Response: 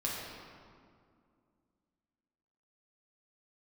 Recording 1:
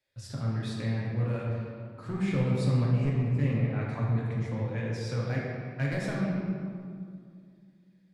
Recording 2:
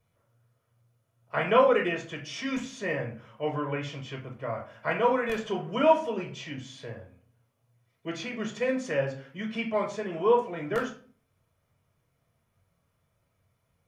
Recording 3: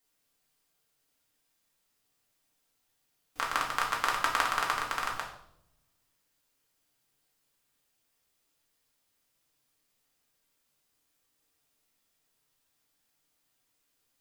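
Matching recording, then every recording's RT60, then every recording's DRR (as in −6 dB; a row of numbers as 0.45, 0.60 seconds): 1; 2.2, 0.40, 0.75 seconds; −5.5, 0.5, −2.5 decibels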